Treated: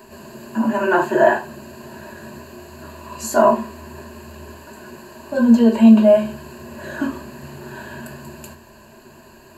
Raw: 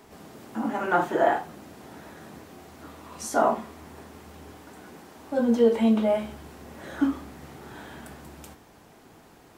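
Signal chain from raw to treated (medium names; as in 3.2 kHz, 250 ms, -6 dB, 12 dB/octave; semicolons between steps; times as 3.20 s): rippled EQ curve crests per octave 1.4, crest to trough 15 dB; trim +5 dB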